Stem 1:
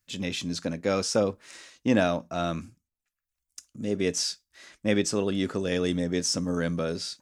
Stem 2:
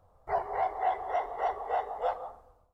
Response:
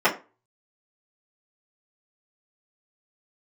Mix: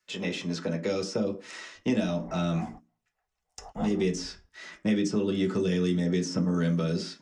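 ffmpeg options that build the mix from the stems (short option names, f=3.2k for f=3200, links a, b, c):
-filter_complex "[0:a]acrossover=split=220 7900:gain=0.158 1 0.141[a][b][c];[a][b][c]amix=inputs=3:normalize=0,acrossover=split=470|3000[d][e][f];[e]acompressor=threshold=-41dB:ratio=3[g];[d][g][f]amix=inputs=3:normalize=0,volume=2dB,asplit=3[h][i][j];[i]volume=-15dB[k];[1:a]adelay=1750,volume=-3.5dB,afade=t=in:st=3.5:d=0.3:silence=0.398107[l];[j]apad=whole_len=197900[m];[l][m]sidechaingate=range=-41dB:threshold=-56dB:ratio=16:detection=peak[n];[2:a]atrim=start_sample=2205[o];[k][o]afir=irnorm=-1:irlink=0[p];[h][n][p]amix=inputs=3:normalize=0,asubboost=boost=8:cutoff=180,acrossover=split=310|2300|7100[q][r][s][t];[q]acompressor=threshold=-27dB:ratio=4[u];[r]acompressor=threshold=-31dB:ratio=4[v];[s]acompressor=threshold=-42dB:ratio=4[w];[t]acompressor=threshold=-51dB:ratio=4[x];[u][v][w][x]amix=inputs=4:normalize=0"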